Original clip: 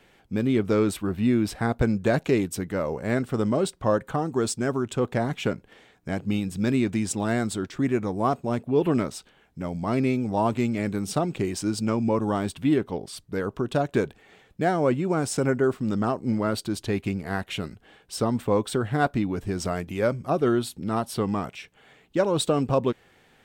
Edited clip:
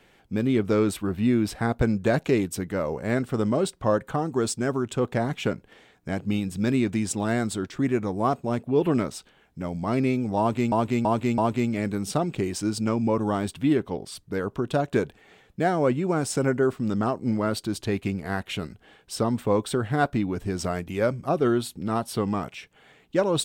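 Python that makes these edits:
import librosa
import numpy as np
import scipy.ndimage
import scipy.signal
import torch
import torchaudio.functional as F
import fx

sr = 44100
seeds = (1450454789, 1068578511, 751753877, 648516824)

y = fx.edit(x, sr, fx.repeat(start_s=10.39, length_s=0.33, count=4), tone=tone)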